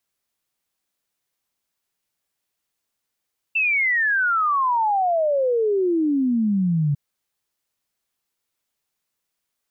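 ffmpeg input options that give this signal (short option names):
-f lavfi -i "aevalsrc='0.141*clip(min(t,3.4-t)/0.01,0,1)*sin(2*PI*2700*3.4/log(140/2700)*(exp(log(140/2700)*t/3.4)-1))':d=3.4:s=44100"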